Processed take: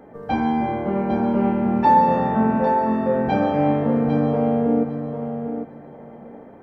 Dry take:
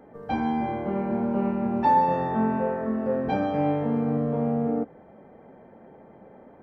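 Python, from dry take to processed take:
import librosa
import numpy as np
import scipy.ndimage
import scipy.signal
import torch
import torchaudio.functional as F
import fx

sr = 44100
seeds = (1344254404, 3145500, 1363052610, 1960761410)

y = fx.echo_feedback(x, sr, ms=802, feedback_pct=17, wet_db=-7.5)
y = F.gain(torch.from_numpy(y), 5.0).numpy()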